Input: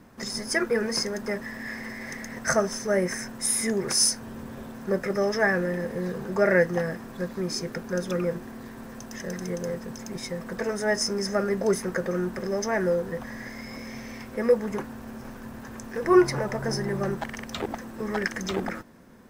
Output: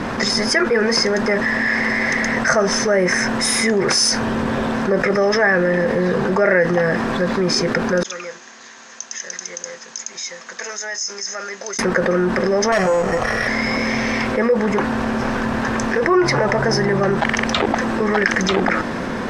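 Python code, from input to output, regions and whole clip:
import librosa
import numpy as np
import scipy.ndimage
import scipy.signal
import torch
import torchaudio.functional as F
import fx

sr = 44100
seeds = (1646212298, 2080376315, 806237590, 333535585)

y = fx.chain(x, sr, fx.bandpass_q(hz=6600.0, q=12.0),
    fx.air_absorb(metres=170.0), at=(8.03, 11.79))
y = fx.chain(y, sr, fx.lower_of_two(delay_ms=1.6),
    fx.resample_bad(factor=6, down='filtered', up='hold'), at=(12.72, 13.48))
y = scipy.signal.sosfilt(scipy.signal.butter(2, 4500.0, 'lowpass', fs=sr, output='sos'), y)
y = fx.low_shelf(y, sr, hz=310.0, db=-8.0)
y = fx.env_flatten(y, sr, amount_pct=70)
y = F.gain(torch.from_numpy(y), 3.5).numpy()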